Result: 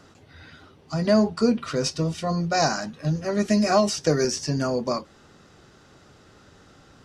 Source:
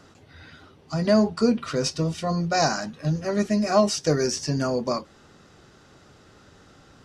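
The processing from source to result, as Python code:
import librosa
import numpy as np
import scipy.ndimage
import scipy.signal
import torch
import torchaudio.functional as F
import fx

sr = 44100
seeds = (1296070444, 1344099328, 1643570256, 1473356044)

y = fx.band_squash(x, sr, depth_pct=70, at=(3.48, 4.25))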